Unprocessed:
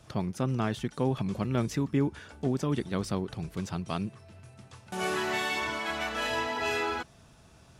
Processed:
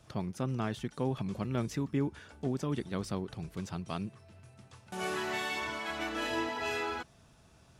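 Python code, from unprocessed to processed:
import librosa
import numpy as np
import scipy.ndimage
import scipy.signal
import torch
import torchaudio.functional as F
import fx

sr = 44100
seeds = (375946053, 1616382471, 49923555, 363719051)

y = fx.peak_eq(x, sr, hz=320.0, db=13.0, octaves=0.38, at=(5.99, 6.49))
y = F.gain(torch.from_numpy(y), -4.5).numpy()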